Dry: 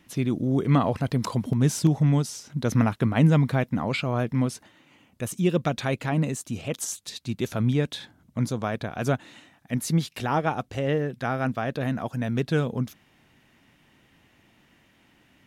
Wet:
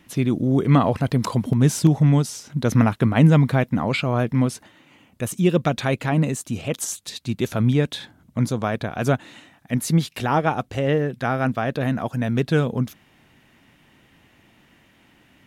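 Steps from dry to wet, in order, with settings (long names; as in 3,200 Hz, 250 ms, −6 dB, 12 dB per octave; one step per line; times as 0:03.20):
parametric band 5,500 Hz −2 dB
level +4.5 dB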